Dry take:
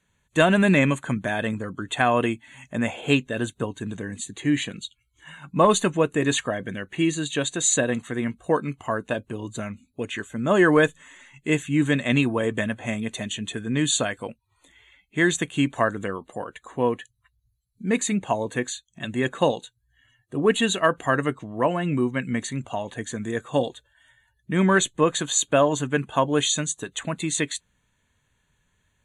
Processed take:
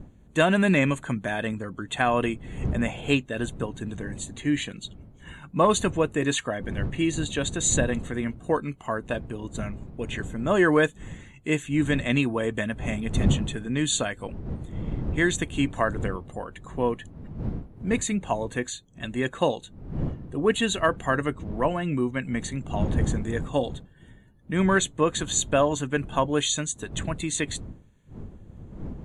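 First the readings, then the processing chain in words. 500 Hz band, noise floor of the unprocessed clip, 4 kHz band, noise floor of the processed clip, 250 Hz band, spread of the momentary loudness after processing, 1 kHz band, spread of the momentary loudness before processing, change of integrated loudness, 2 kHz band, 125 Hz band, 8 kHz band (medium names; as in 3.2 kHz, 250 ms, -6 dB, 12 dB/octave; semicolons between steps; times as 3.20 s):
-2.5 dB, -71 dBFS, -2.5 dB, -52 dBFS, -2.0 dB, 13 LU, -2.5 dB, 13 LU, -2.5 dB, -2.5 dB, 0.0 dB, -2.5 dB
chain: wind noise 160 Hz -32 dBFS; trim -2.5 dB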